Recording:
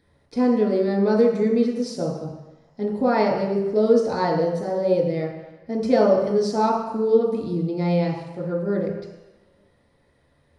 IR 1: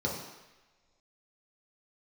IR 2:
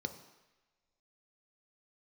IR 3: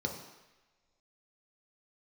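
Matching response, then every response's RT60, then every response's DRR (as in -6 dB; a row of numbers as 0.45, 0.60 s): 1; not exponential, not exponential, not exponential; -3.5, 7.5, 1.5 dB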